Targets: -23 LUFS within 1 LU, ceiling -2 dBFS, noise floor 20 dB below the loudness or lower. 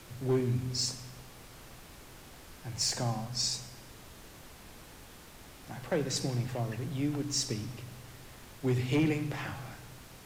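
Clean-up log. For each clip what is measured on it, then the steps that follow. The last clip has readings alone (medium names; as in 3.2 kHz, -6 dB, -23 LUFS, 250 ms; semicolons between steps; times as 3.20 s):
clipped samples 0.4%; clipping level -22.0 dBFS; noise floor -52 dBFS; noise floor target -53 dBFS; loudness -32.5 LUFS; peak level -22.0 dBFS; loudness target -23.0 LUFS
-> clip repair -22 dBFS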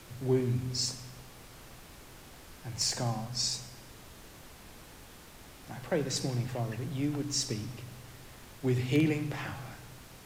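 clipped samples 0.0%; noise floor -52 dBFS; noise floor target -53 dBFS
-> noise print and reduce 6 dB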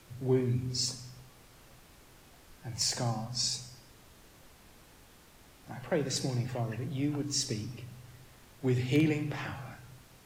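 noise floor -58 dBFS; loudness -32.5 LUFS; peak level -15.0 dBFS; loudness target -23.0 LUFS
-> trim +9.5 dB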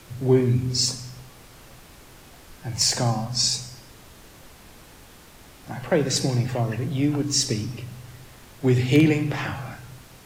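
loudness -23.0 LUFS; peak level -5.5 dBFS; noise floor -48 dBFS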